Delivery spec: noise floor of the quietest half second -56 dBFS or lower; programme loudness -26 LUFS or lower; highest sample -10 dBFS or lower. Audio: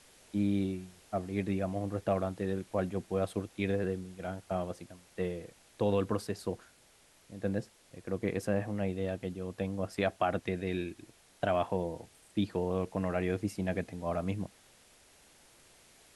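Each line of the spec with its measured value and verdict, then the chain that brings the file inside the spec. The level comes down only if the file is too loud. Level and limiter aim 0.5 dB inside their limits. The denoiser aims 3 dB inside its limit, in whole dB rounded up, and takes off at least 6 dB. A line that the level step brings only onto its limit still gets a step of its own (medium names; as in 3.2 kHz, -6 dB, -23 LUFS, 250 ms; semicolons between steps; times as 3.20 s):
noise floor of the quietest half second -63 dBFS: pass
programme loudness -34.5 LUFS: pass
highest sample -16.0 dBFS: pass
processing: none needed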